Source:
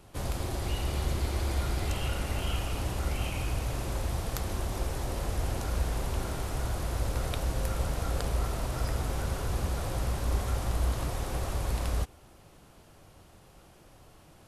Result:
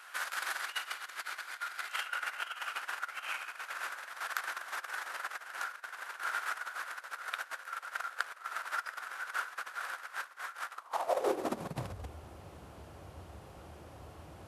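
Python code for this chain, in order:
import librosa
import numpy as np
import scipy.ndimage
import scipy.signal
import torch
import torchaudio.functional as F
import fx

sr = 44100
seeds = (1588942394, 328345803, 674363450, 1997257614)

y = fx.over_compress(x, sr, threshold_db=-34.0, ratio=-0.5)
y = fx.high_shelf(y, sr, hz=2200.0, db=fx.steps((0.0, -5.0), (2.05, -11.0)))
y = fx.filter_sweep_highpass(y, sr, from_hz=1500.0, to_hz=73.0, start_s=10.71, end_s=12.06, q=4.2)
y = fx.low_shelf(y, sr, hz=240.0, db=-10.0)
y = y * 10.0 ** (3.5 / 20.0)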